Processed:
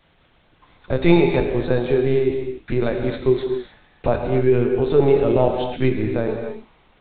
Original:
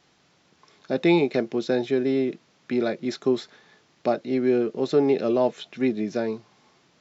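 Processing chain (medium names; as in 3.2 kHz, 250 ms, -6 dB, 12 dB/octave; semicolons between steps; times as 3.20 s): LPC vocoder at 8 kHz pitch kept; gated-style reverb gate 300 ms flat, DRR 3 dB; trim +4 dB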